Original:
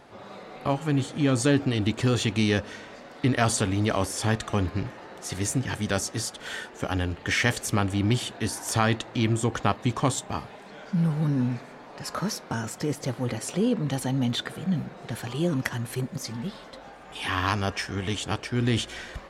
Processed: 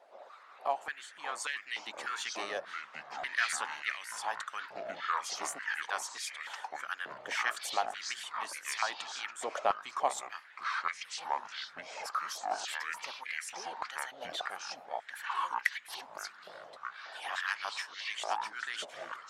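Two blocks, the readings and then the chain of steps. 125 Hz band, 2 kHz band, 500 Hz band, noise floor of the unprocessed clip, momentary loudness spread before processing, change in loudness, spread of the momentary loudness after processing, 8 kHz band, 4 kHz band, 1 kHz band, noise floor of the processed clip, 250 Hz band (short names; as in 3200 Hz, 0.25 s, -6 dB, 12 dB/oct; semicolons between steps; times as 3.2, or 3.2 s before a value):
under -40 dB, -3.5 dB, -12.0 dB, -46 dBFS, 12 LU, -9.5 dB, 9 LU, -8.5 dB, -7.0 dB, -2.5 dB, -55 dBFS, -32.5 dB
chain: harmonic-percussive split harmonic -15 dB; echoes that change speed 0.311 s, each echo -6 st, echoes 2; stepped high-pass 3.4 Hz 620–2000 Hz; gain -9 dB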